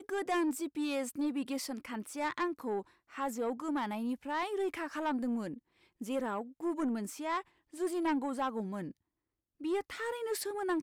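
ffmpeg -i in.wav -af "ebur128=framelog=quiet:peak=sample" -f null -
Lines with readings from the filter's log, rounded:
Integrated loudness:
  I:         -35.9 LUFS
  Threshold: -46.2 LUFS
Loudness range:
  LRA:         1.0 LU
  Threshold: -56.5 LUFS
  LRA low:   -37.0 LUFS
  LRA high:  -36.0 LUFS
Sample peak:
  Peak:      -26.6 dBFS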